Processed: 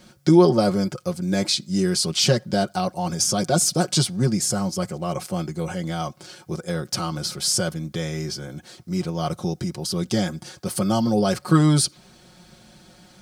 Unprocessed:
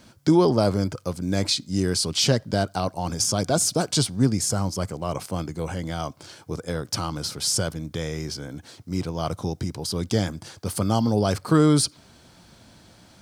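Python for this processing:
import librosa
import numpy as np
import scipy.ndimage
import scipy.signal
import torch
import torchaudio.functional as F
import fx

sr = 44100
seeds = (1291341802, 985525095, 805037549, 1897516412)

y = fx.notch(x, sr, hz=980.0, q=7.7)
y = y + 0.74 * np.pad(y, (int(5.5 * sr / 1000.0), 0))[:len(y)]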